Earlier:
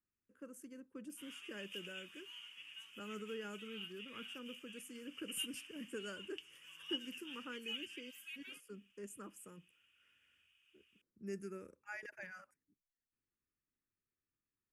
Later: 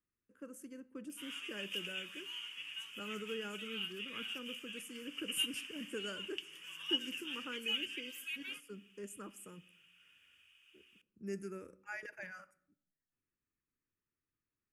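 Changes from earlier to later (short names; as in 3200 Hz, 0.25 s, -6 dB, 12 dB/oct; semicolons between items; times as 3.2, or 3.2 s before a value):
background +6.0 dB; reverb: on, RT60 0.70 s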